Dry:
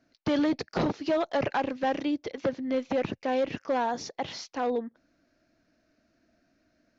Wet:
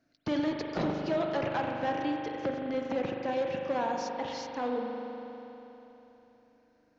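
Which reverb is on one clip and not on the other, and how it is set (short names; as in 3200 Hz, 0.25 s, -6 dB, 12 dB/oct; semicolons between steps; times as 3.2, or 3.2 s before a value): spring tank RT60 3.5 s, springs 40 ms, chirp 65 ms, DRR 1 dB; gain -5 dB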